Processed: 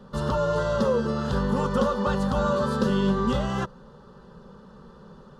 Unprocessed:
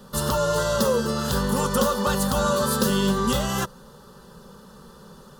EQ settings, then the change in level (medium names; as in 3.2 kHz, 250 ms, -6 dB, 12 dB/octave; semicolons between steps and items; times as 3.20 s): tape spacing loss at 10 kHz 24 dB; 0.0 dB